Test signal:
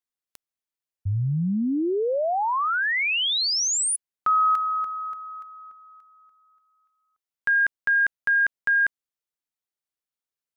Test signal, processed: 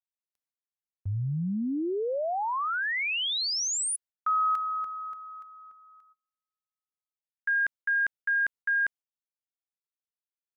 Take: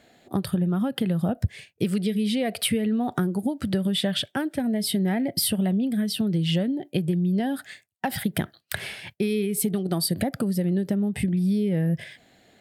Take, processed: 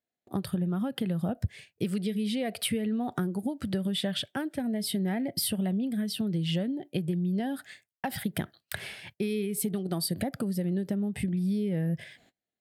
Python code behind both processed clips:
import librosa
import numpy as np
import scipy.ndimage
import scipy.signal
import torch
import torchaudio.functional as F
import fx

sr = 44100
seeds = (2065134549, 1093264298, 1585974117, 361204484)

y = fx.gate_hold(x, sr, open_db=-45.0, close_db=-49.0, hold_ms=112.0, range_db=-31, attack_ms=2.1, release_ms=40.0)
y = y * 10.0 ** (-5.5 / 20.0)